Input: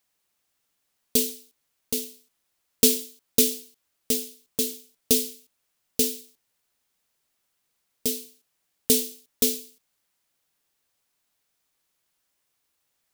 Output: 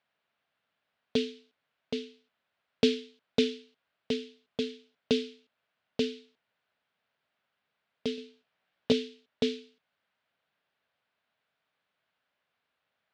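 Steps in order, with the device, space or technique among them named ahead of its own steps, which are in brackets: 8.16–8.92 doubler 16 ms -2.5 dB; guitar cabinet (speaker cabinet 110–3500 Hz, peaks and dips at 330 Hz -7 dB, 640 Hz +5 dB, 1500 Hz +5 dB)

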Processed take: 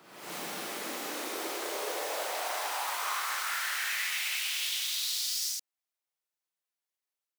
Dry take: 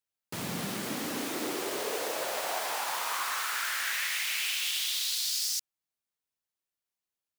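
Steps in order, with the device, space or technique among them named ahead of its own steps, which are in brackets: ghost voice (reverse; reverb RT60 1.1 s, pre-delay 26 ms, DRR -3.5 dB; reverse; HPF 400 Hz 12 dB/oct); gain -5.5 dB

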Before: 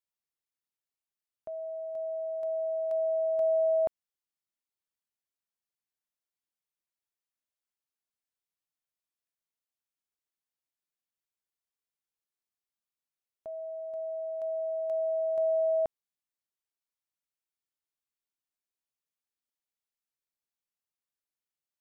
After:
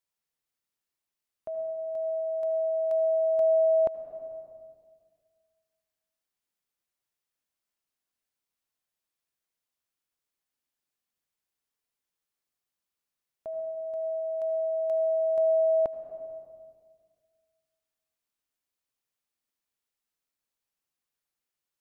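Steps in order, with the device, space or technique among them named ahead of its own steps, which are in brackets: compressed reverb return (on a send at -3.5 dB: reverb RT60 1.7 s, pre-delay 70 ms + compressor 10:1, threshold -36 dBFS, peak gain reduction 10 dB); on the sum: gain +3.5 dB

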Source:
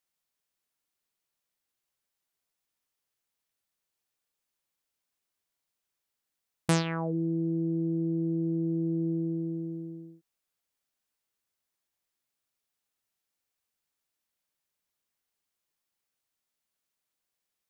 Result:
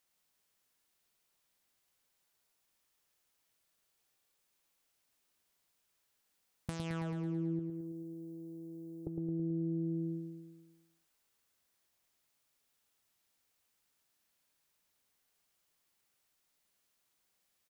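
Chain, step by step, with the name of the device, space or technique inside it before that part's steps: 7.59–9.07 differentiator; serial compression, peaks first (compressor 10:1, threshold -37 dBFS, peak gain reduction 16.5 dB; compressor 2.5:1, threshold -45 dBFS, peak gain reduction 8 dB); feedback echo 0.109 s, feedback 58%, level -5.5 dB; gain +5 dB

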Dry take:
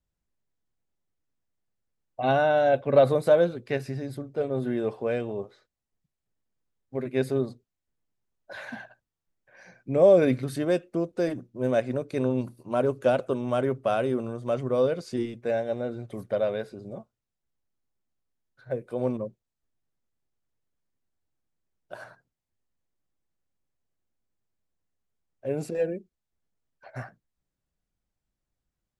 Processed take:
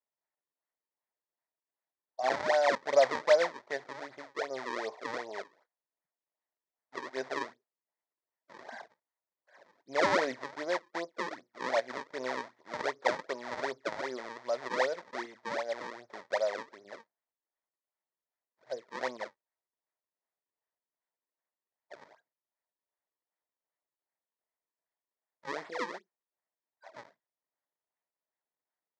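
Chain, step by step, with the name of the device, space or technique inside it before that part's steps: circuit-bent sampling toy (decimation with a swept rate 36×, swing 160% 2.6 Hz; speaker cabinet 490–5800 Hz, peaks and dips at 650 Hz +6 dB, 940 Hz +7 dB, 1900 Hz +9 dB, 2800 Hz -9 dB); gain -7 dB

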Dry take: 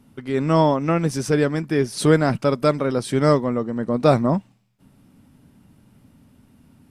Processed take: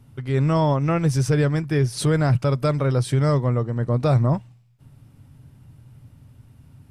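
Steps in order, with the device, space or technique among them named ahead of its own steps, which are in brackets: car stereo with a boomy subwoofer (resonant low shelf 160 Hz +7 dB, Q 3; limiter -9.5 dBFS, peak gain reduction 6.5 dB); gain -1 dB

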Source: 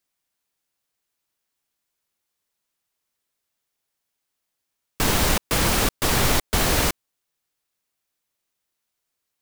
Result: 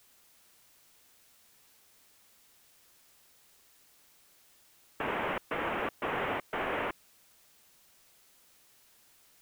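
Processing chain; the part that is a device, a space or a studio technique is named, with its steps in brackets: army field radio (BPF 370–3100 Hz; CVSD 16 kbps; white noise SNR 22 dB); gain -6 dB

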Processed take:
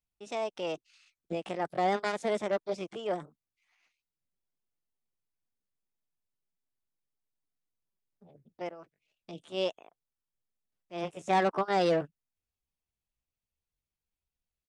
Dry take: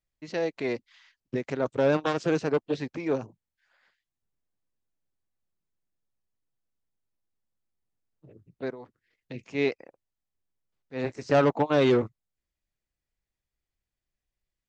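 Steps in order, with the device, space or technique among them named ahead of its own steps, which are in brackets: chipmunk voice (pitch shift +5 st); gain -5 dB

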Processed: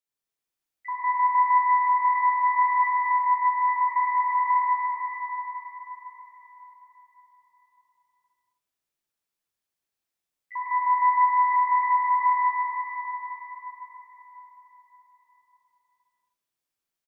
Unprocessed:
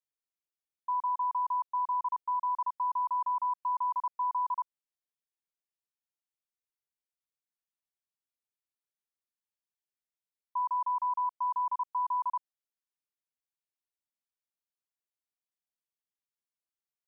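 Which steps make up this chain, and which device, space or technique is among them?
2.83–3.69 EQ curve 410 Hz 0 dB, 600 Hz -13 dB, 910 Hz +2 dB, 1300 Hz -20 dB, 2000 Hz -2 dB; feedback echo 0.119 s, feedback 51%, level -23 dB; shimmer-style reverb (harmoniser +12 st -10 dB; reverb RT60 4.9 s, pre-delay 30 ms, DRR -7 dB)

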